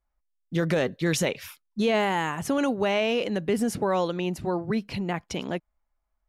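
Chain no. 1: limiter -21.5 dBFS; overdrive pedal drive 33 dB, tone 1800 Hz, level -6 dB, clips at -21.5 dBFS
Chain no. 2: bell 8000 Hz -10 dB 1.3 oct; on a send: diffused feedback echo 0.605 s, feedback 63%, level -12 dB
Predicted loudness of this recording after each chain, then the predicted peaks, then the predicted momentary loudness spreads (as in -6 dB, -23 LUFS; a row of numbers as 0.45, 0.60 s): -28.5, -27.0 LUFS; -21.5, -13.5 dBFS; 4, 9 LU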